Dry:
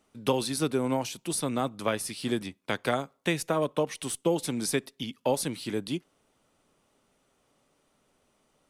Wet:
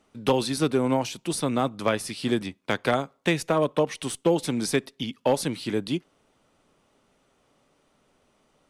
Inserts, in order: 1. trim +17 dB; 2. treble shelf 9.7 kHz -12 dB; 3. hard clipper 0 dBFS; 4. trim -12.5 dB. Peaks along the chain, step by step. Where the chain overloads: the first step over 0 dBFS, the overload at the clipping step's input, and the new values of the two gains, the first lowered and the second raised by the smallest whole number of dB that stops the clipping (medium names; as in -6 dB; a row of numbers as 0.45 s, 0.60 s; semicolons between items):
+5.5 dBFS, +5.5 dBFS, 0.0 dBFS, -12.5 dBFS; step 1, 5.5 dB; step 1 +11 dB, step 4 -6.5 dB